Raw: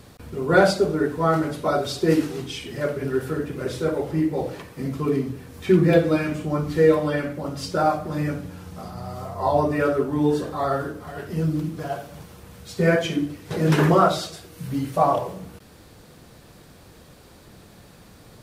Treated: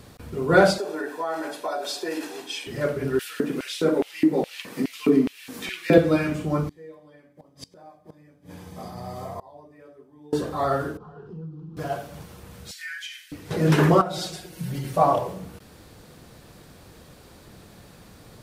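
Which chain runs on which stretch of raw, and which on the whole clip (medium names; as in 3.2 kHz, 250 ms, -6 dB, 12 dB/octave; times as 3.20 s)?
0.78–2.67 s: high-pass 340 Hz 24 dB/octave + comb 1.2 ms, depth 46% + compression 4:1, threshold -25 dBFS
3.19–5.98 s: LFO high-pass square 2.4 Hz 230–2700 Hz + tape noise reduction on one side only encoder only
6.68–10.33 s: comb of notches 1.4 kHz + inverted gate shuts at -23 dBFS, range -27 dB
10.97–11.77 s: compression 4:1, threshold -35 dBFS + tape spacing loss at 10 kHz 37 dB + static phaser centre 410 Hz, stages 8
12.71–13.32 s: steep high-pass 1.6 kHz 48 dB/octave + comb 6.6 ms, depth 39% + compression 2.5:1, threshold -35 dBFS
14.01–14.93 s: band-stop 1.2 kHz, Q 5.7 + comb 5.5 ms, depth 82% + compression 16:1, threshold -25 dBFS
whole clip: none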